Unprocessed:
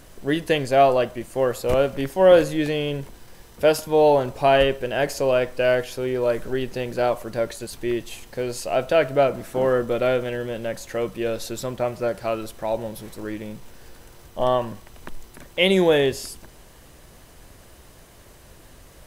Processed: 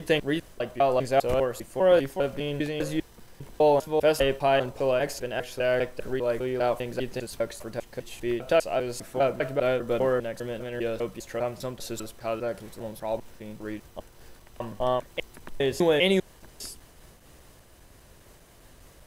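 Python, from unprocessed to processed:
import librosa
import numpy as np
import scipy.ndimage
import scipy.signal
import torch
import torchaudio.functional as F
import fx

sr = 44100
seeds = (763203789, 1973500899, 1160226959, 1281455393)

y = fx.block_reorder(x, sr, ms=200.0, group=3)
y = fx.am_noise(y, sr, seeds[0], hz=5.7, depth_pct=50)
y = F.gain(torch.from_numpy(y), -2.0).numpy()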